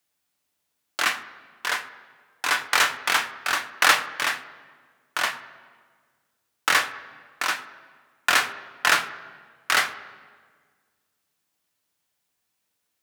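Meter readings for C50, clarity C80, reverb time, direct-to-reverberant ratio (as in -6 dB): 14.5 dB, 15.0 dB, 1.6 s, 5.5 dB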